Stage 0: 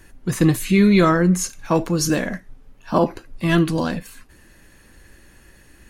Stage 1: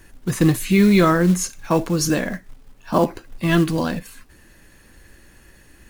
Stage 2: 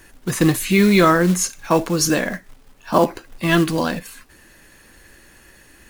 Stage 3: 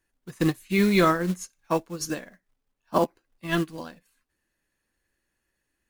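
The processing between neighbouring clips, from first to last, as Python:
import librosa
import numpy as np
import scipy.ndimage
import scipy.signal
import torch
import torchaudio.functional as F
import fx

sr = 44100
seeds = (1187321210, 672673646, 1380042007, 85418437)

y1 = fx.quant_companded(x, sr, bits=6)
y2 = fx.low_shelf(y1, sr, hz=250.0, db=-8.0)
y2 = y2 * 10.0 ** (4.0 / 20.0)
y3 = fx.upward_expand(y2, sr, threshold_db=-28.0, expansion=2.5)
y3 = y3 * 10.0 ** (-5.0 / 20.0)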